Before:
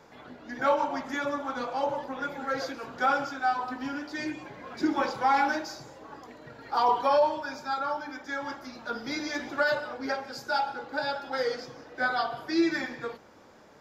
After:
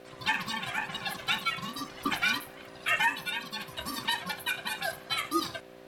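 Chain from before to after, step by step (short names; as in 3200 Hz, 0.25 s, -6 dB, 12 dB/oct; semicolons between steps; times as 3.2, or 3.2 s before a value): wide varispeed 2.35×; buzz 60 Hz, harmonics 5, -48 dBFS -4 dB/oct; ring modulator 450 Hz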